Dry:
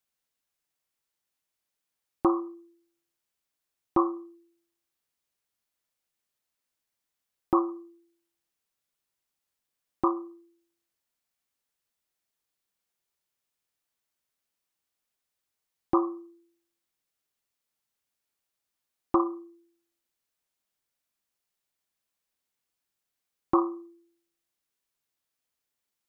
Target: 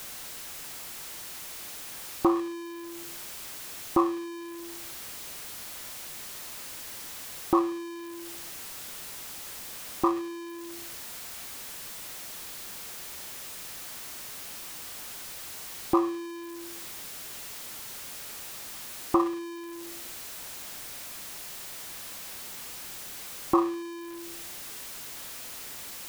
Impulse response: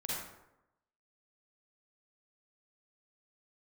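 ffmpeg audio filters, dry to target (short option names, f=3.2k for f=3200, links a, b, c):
-af "aeval=exprs='val(0)+0.5*0.02*sgn(val(0))':c=same"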